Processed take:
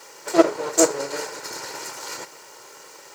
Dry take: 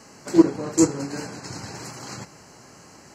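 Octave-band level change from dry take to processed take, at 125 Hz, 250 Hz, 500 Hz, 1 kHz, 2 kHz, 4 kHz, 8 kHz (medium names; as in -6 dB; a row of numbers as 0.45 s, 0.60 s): -15.0 dB, -5.0 dB, +4.5 dB, +7.0 dB, +6.5 dB, +6.0 dB, +6.0 dB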